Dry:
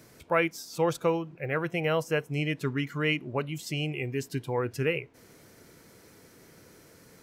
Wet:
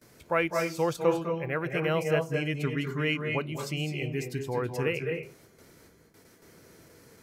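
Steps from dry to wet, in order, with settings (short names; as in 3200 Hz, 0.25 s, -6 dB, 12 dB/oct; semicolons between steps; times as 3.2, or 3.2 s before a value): gate with hold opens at -44 dBFS; on a send: reverb RT60 0.35 s, pre-delay 0.199 s, DRR 4.5 dB; on the sum: gain -1.5 dB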